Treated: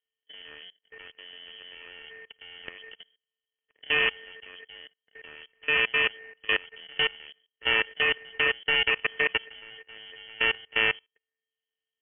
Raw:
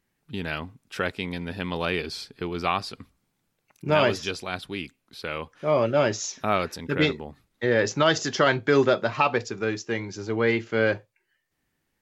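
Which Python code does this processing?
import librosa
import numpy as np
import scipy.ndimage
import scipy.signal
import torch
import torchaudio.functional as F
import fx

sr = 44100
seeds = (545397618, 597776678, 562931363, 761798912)

y = np.r_[np.sort(x[:len(x) // 32 * 32].reshape(-1, 32), axis=1).ravel(), x[len(x) // 32 * 32:]]
y = fx.freq_invert(y, sr, carrier_hz=3200)
y = fx.level_steps(y, sr, step_db=23)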